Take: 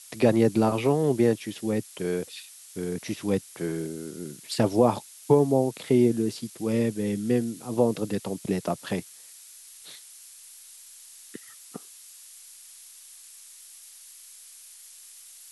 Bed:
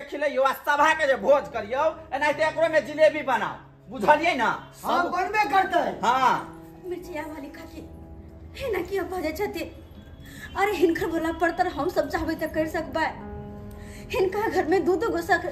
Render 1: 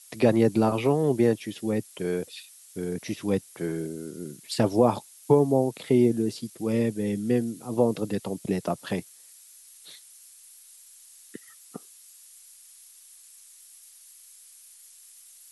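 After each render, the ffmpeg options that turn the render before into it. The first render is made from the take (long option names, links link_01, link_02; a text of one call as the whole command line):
ffmpeg -i in.wav -af "afftdn=noise_reduction=6:noise_floor=-49" out.wav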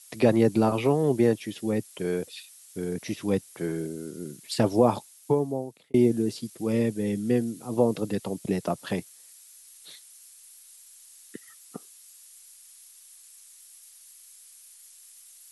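ffmpeg -i in.wav -filter_complex "[0:a]asplit=2[link_01][link_02];[link_01]atrim=end=5.94,asetpts=PTS-STARTPTS,afade=type=out:start_time=4.94:duration=1[link_03];[link_02]atrim=start=5.94,asetpts=PTS-STARTPTS,afade=type=in:duration=0.004:curve=hsin[link_04];[link_03][link_04]concat=n=2:v=0:a=1" out.wav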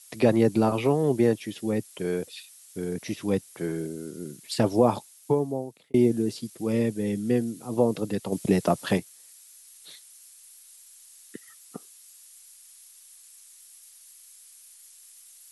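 ffmpeg -i in.wav -filter_complex "[0:a]asettb=1/sr,asplit=3[link_01][link_02][link_03];[link_01]atrim=end=8.324[link_04];[link_02]atrim=start=8.32:end=8.98,asetpts=PTS-STARTPTS,afade=type=in:duration=0.004:curve=qsin,afade=type=out:start_time=0.656:duration=0.004:curve=qsin,acontrast=35[link_05];[link_03]atrim=start=8.976[link_06];[link_04][link_05]acrossfade=duration=0.004:curve1=hsin:curve2=qsin[link_07];[link_07][link_06]acrossfade=duration=0.004:curve1=qsin:curve2=hsin" out.wav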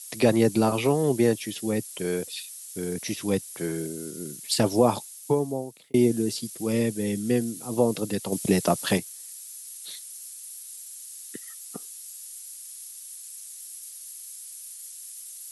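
ffmpeg -i in.wav -af "highpass=48,highshelf=frequency=3600:gain=11" out.wav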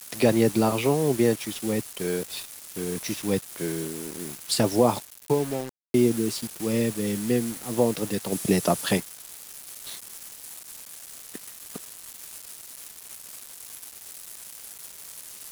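ffmpeg -i in.wav -af "acrusher=bits=5:mix=0:aa=0.000001" out.wav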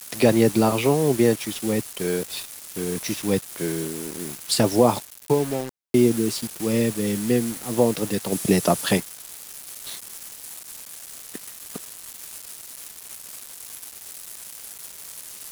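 ffmpeg -i in.wav -af "volume=3dB" out.wav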